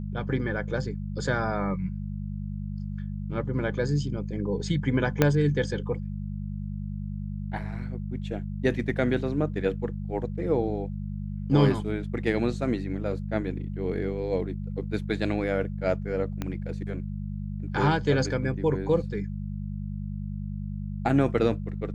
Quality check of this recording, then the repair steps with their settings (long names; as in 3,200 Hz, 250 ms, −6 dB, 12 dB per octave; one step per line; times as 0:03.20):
mains hum 50 Hz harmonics 4 −33 dBFS
0:05.22: click −6 dBFS
0:16.42: click −17 dBFS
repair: click removal
hum removal 50 Hz, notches 4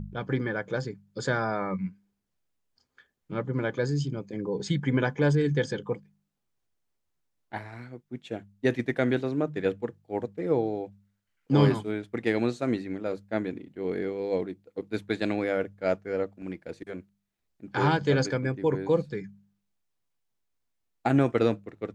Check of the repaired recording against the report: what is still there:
0:05.22: click
0:16.42: click